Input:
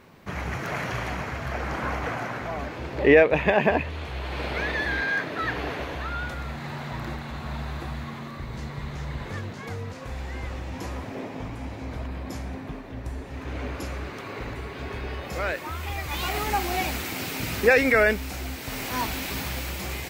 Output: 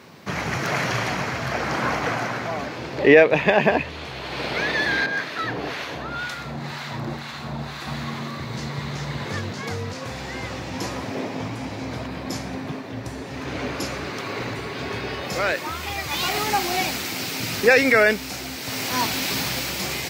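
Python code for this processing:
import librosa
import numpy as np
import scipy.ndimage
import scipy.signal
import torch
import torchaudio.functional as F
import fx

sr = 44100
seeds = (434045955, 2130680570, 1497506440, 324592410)

y = fx.harmonic_tremolo(x, sr, hz=2.0, depth_pct=70, crossover_hz=980.0, at=(5.06, 7.87))
y = scipy.signal.sosfilt(scipy.signal.butter(4, 99.0, 'highpass', fs=sr, output='sos'), y)
y = fx.peak_eq(y, sr, hz=5000.0, db=7.0, octaves=1.1)
y = fx.rider(y, sr, range_db=3, speed_s=2.0)
y = y * librosa.db_to_amplitude(3.0)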